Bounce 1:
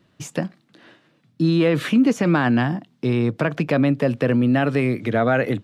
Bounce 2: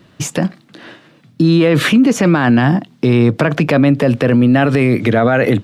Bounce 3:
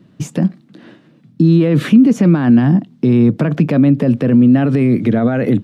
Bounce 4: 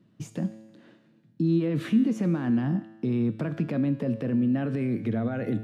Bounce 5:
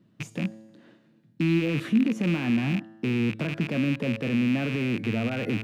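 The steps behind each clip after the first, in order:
loudness maximiser +16 dB; trim -3 dB
peaking EQ 200 Hz +14 dB 2.1 oct; trim -10.5 dB
feedback comb 110 Hz, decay 1.2 s, harmonics all, mix 70%; trim -5 dB
rattle on loud lows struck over -34 dBFS, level -23 dBFS

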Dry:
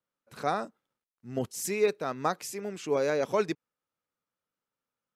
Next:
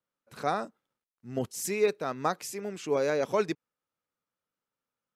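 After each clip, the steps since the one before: no audible change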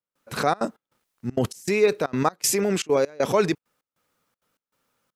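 in parallel at +2 dB: compressor with a negative ratio -38 dBFS, ratio -1; on the sum: trance gate "..xxxxx.xx" 197 bpm -24 dB; trim +5.5 dB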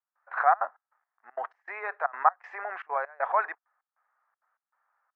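elliptic band-pass 720–1800 Hz, stop band 80 dB; trim +3 dB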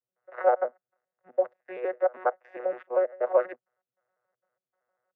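vocoder on a broken chord bare fifth, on B2, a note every 80 ms; resonant low shelf 710 Hz +8 dB, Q 3; trim -3.5 dB

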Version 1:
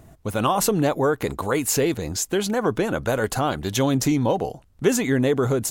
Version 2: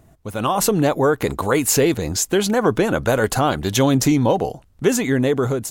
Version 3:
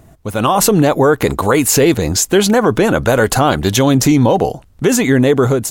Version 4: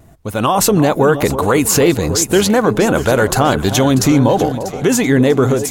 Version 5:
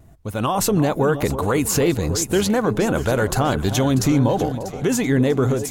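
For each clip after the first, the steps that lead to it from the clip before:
level rider gain up to 11.5 dB; trim -3.5 dB
loudness maximiser +9 dB; trim -1.5 dB
echo whose repeats swap between lows and highs 322 ms, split 1 kHz, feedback 64%, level -10 dB; vibrato 1.2 Hz 25 cents; trim -1 dB
bass shelf 140 Hz +7 dB; trim -7.5 dB

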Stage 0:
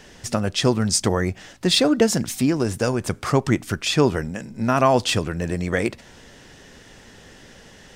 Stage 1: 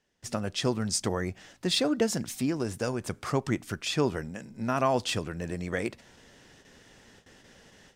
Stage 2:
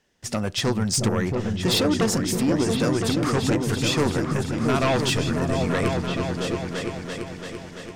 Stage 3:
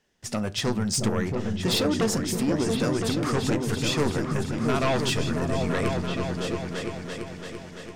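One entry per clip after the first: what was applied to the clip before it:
gate with hold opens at -36 dBFS; bass shelf 61 Hz -6 dB; trim -8.5 dB
sine folder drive 8 dB, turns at -13 dBFS; delay with an opening low-pass 338 ms, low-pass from 200 Hz, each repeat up 2 oct, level 0 dB; trim -4.5 dB
reverberation RT60 0.35 s, pre-delay 5 ms, DRR 15 dB; trim -3 dB

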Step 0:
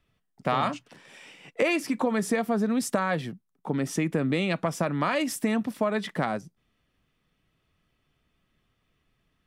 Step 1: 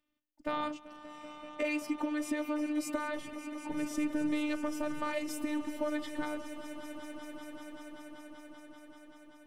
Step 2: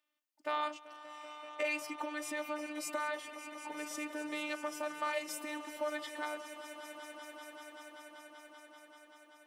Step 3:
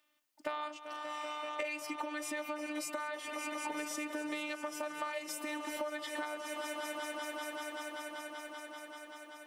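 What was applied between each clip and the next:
resonant low shelf 110 Hz -10.5 dB, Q 3; robot voice 299 Hz; on a send: echo with a slow build-up 193 ms, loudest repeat 5, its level -15 dB; on the sum: trim -7.5 dB
high-pass 610 Hz 12 dB/octave; trim +1.5 dB
compression 10:1, threshold -44 dBFS, peak gain reduction 14 dB; trim +9 dB

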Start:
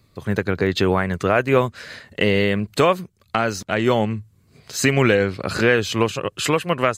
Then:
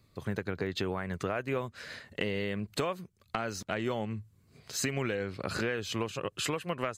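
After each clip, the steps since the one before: compression 4:1, threshold -23 dBFS, peak gain reduction 10.5 dB; trim -7 dB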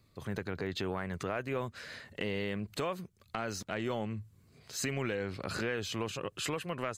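transient shaper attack -3 dB, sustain +4 dB; trim -2 dB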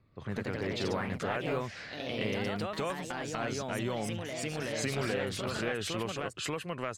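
level-controlled noise filter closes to 2.1 kHz, open at -31.5 dBFS; ever faster or slower copies 122 ms, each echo +2 st, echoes 3

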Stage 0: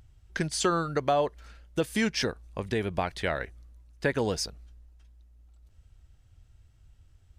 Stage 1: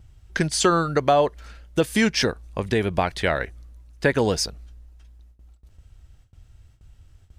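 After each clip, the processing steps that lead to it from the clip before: gate with hold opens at -50 dBFS; trim +7 dB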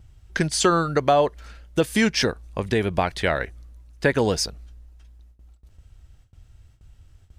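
no audible change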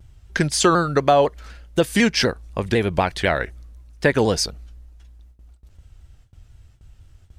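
vibrato with a chosen wave saw down 4 Hz, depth 100 cents; trim +2.5 dB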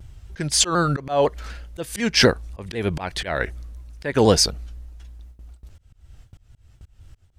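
slow attack 272 ms; trim +5 dB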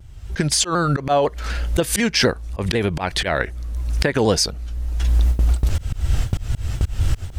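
recorder AGC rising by 40 dB/s; trim -2 dB

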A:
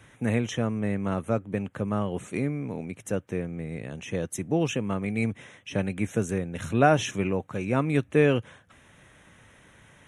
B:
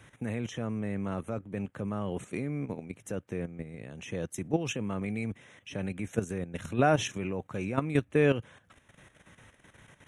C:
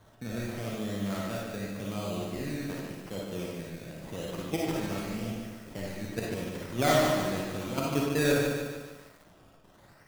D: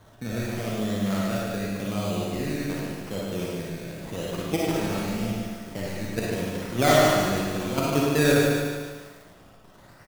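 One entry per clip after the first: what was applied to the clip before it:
level held to a coarse grid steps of 11 dB
decimation with a swept rate 17×, swing 60% 0.87 Hz; reverberation RT60 0.50 s, pre-delay 15 ms, DRR -2.5 dB; bit-crushed delay 148 ms, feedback 55%, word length 8-bit, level -5 dB; trim -4.5 dB
feedback delay 107 ms, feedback 50%, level -7 dB; trim +5 dB

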